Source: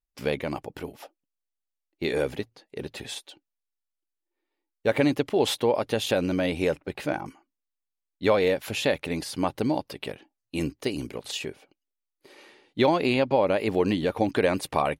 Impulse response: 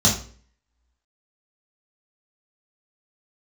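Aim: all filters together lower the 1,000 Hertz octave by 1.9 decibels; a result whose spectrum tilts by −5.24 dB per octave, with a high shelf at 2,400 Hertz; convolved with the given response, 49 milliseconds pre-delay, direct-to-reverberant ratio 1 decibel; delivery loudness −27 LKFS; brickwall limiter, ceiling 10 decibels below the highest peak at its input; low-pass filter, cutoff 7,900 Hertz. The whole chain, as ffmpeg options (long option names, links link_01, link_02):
-filter_complex "[0:a]lowpass=7900,equalizer=frequency=1000:width_type=o:gain=-3.5,highshelf=frequency=2400:gain=6.5,alimiter=limit=-18.5dB:level=0:latency=1,asplit=2[link_01][link_02];[1:a]atrim=start_sample=2205,adelay=49[link_03];[link_02][link_03]afir=irnorm=-1:irlink=0,volume=-17.5dB[link_04];[link_01][link_04]amix=inputs=2:normalize=0,volume=-1.5dB"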